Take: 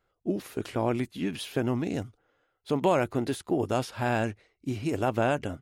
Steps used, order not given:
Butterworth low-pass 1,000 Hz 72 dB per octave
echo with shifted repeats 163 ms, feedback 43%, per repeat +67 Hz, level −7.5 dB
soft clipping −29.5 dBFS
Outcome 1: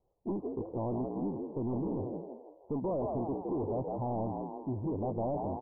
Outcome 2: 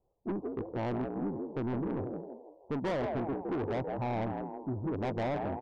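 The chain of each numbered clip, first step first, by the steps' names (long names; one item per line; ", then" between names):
echo with shifted repeats, then soft clipping, then Butterworth low-pass
echo with shifted repeats, then Butterworth low-pass, then soft clipping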